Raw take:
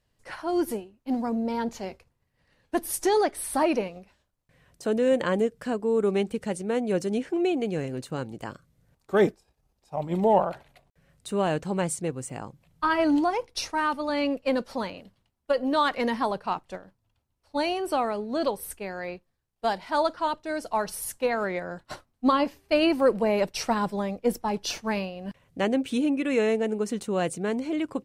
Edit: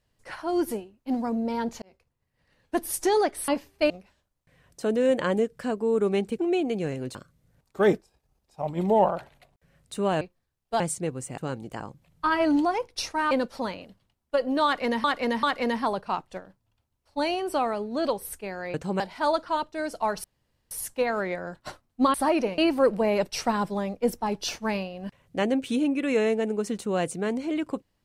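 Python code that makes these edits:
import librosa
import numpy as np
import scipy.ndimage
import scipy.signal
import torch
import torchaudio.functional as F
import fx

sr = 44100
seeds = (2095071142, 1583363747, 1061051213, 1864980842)

y = fx.edit(x, sr, fx.fade_in_span(start_s=1.82, length_s=0.95, curve='qsin'),
    fx.swap(start_s=3.48, length_s=0.44, other_s=22.38, other_length_s=0.42),
    fx.cut(start_s=6.41, length_s=0.9),
    fx.move(start_s=8.07, length_s=0.42, to_s=12.39),
    fx.swap(start_s=11.55, length_s=0.26, other_s=19.12, other_length_s=0.59),
    fx.cut(start_s=13.9, length_s=0.57),
    fx.repeat(start_s=15.81, length_s=0.39, count=3),
    fx.insert_room_tone(at_s=20.95, length_s=0.47), tone=tone)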